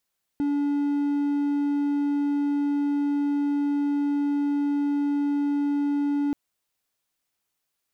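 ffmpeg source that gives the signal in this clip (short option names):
-f lavfi -i "aevalsrc='0.106*(1-4*abs(mod(287*t+0.25,1)-0.5))':d=5.93:s=44100"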